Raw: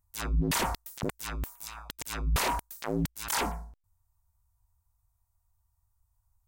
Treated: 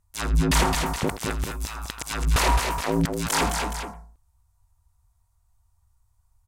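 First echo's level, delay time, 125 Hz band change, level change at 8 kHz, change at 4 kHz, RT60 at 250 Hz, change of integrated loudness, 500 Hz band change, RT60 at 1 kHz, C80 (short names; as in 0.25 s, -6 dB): -14.0 dB, 83 ms, +8.0 dB, +7.0 dB, +8.0 dB, none, +7.5 dB, +8.5 dB, none, none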